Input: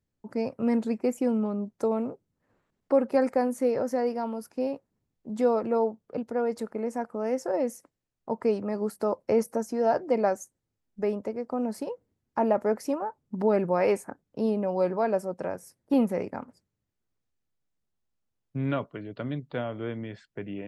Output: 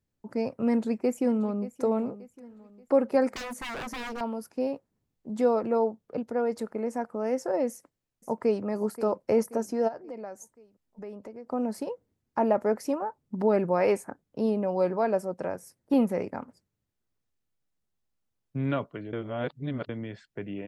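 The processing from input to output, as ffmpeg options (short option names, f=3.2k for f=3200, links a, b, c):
-filter_complex "[0:a]asplit=2[a][b];[b]afade=t=in:st=0.66:d=0.01,afade=t=out:st=1.81:d=0.01,aecho=0:1:580|1160|1740|2320:0.16788|0.0671522|0.0268609|0.0107443[c];[a][c]amix=inputs=2:normalize=0,asettb=1/sr,asplit=3[d][e][f];[d]atrim=end=3.344[g];[e]atrim=start=3.34:end=4.21,asetpts=PTS-STARTPTS,afade=t=in:d=0.004:c=qsin,afade=t=out:st=0.866:d=0.004:c=qsin,aeval=exprs='0.0282*(abs(mod(val(0)/0.0282+3,4)-2)-1)':c=same[h];[f]atrim=start=4.206[i];[g][h]acrossfade=d=0.004:c1=hsin:c2=qsin[j];[j][i]acrossfade=d=0.004:c1=qsin:c2=hsin,asplit=2[k][l];[l]afade=t=in:st=7.69:d=0.01,afade=t=out:st=8.64:d=0.01,aecho=0:1:530|1060|1590|2120|2650:0.223872|0.111936|0.055968|0.027984|0.013992[m];[k][m]amix=inputs=2:normalize=0,asplit=3[n][o][p];[n]afade=t=out:st=9.87:d=0.02[q];[o]acompressor=threshold=-43dB:ratio=2.5:attack=3.2:release=140:knee=1:detection=peak,afade=t=in:st=9.87:d=0.02,afade=t=out:st=11.46:d=0.02[r];[p]afade=t=in:st=11.46:d=0.02[s];[q][r][s]amix=inputs=3:normalize=0,asplit=3[t][u][v];[t]atrim=end=19.132[w];[u]atrim=start=19.128:end=19.892,asetpts=PTS-STARTPTS,areverse[x];[v]atrim=start=19.888[y];[w][x]acrossfade=d=0.004:c1=hsin:c2=hsin[z];[z][y]acrossfade=d=0.004:c1=hsin:c2=hsin"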